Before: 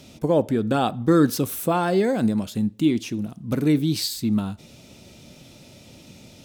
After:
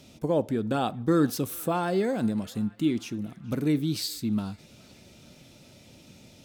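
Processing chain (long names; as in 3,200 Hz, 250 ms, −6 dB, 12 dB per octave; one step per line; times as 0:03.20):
feedback echo with a band-pass in the loop 424 ms, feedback 78%, band-pass 1,900 Hz, level −20.5 dB
level −5.5 dB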